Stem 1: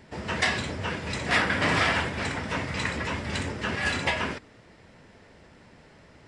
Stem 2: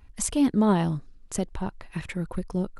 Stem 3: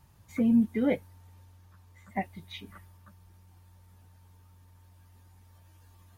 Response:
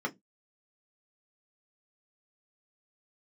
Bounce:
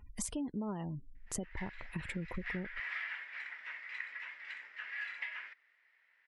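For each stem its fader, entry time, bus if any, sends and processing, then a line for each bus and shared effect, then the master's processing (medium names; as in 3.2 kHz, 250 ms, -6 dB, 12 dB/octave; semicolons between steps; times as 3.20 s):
-10.0 dB, 1.15 s, no send, ladder band-pass 2.2 kHz, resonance 60%; treble shelf 2.9 kHz -11.5 dB; level rider gain up to 9 dB
-2.5 dB, 0.00 s, no send, spectral gate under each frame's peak -30 dB strong
mute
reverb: none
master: compression 8:1, threshold -36 dBFS, peak gain reduction 17 dB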